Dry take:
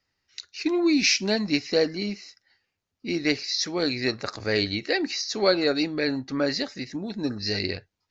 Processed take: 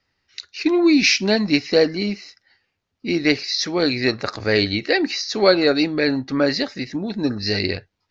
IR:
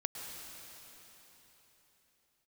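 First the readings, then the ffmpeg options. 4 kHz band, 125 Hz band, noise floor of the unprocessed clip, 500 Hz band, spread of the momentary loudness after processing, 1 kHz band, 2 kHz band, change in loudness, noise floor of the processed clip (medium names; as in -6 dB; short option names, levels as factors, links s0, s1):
+4.5 dB, +6.5 dB, -81 dBFS, +6.5 dB, 11 LU, +6.5 dB, +6.5 dB, +6.0 dB, -76 dBFS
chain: -af "lowpass=5000,volume=2.11"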